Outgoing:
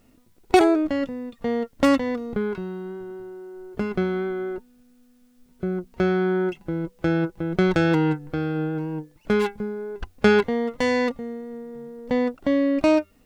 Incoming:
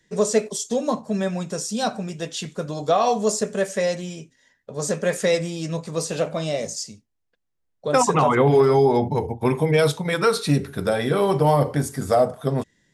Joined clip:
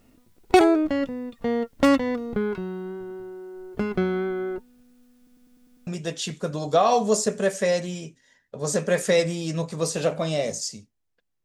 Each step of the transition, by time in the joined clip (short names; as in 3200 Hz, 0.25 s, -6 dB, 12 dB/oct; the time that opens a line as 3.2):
outgoing
5.17 stutter in place 0.10 s, 7 plays
5.87 switch to incoming from 2.02 s